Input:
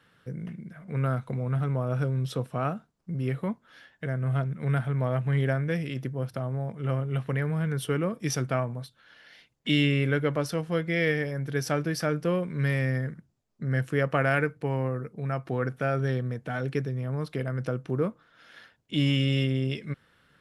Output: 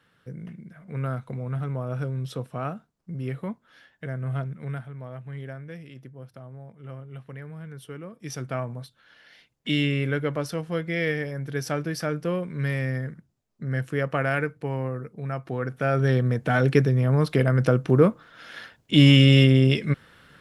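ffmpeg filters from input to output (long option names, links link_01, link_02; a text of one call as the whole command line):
ffmpeg -i in.wav -af "volume=19.5dB,afade=type=out:start_time=4.46:duration=0.44:silence=0.334965,afade=type=in:start_time=8.12:duration=0.61:silence=0.281838,afade=type=in:start_time=15.67:duration=0.85:silence=0.298538" out.wav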